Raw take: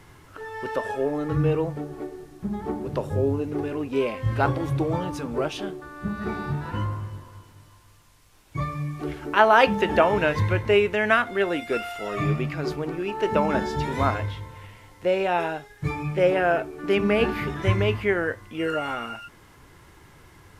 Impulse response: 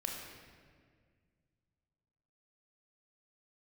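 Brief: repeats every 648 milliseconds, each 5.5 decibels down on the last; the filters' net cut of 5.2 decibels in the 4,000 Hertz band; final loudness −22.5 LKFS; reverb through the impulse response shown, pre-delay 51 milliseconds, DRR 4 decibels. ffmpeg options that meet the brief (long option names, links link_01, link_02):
-filter_complex "[0:a]equalizer=frequency=4000:width_type=o:gain=-8.5,aecho=1:1:648|1296|1944|2592|3240|3888|4536:0.531|0.281|0.149|0.079|0.0419|0.0222|0.0118,asplit=2[link_01][link_02];[1:a]atrim=start_sample=2205,adelay=51[link_03];[link_02][link_03]afir=irnorm=-1:irlink=0,volume=-5.5dB[link_04];[link_01][link_04]amix=inputs=2:normalize=0,volume=0.5dB"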